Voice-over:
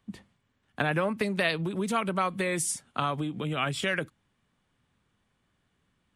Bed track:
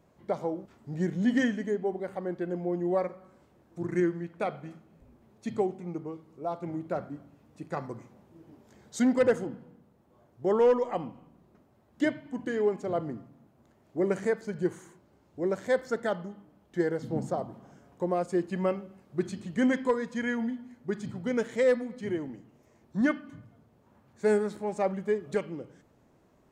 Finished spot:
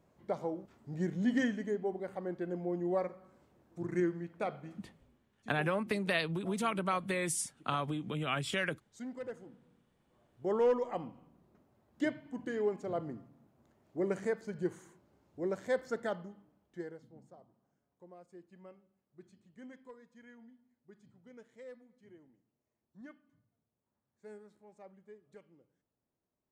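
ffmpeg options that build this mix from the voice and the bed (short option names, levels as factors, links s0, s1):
-filter_complex "[0:a]adelay=4700,volume=0.562[s0];[1:a]volume=2.51,afade=t=out:st=4.84:d=0.45:silence=0.199526,afade=t=in:st=9.4:d=1.26:silence=0.223872,afade=t=out:st=16.06:d=1.06:silence=0.1[s1];[s0][s1]amix=inputs=2:normalize=0"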